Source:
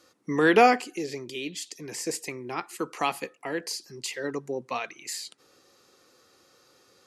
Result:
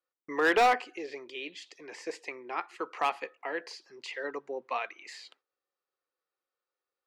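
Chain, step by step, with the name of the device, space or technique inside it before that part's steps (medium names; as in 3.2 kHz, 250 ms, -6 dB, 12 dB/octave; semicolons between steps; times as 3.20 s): walkie-talkie (band-pass 500–2700 Hz; hard clipper -18.5 dBFS, distortion -11 dB; gate -59 dBFS, range -28 dB); bass shelf 180 Hz -4 dB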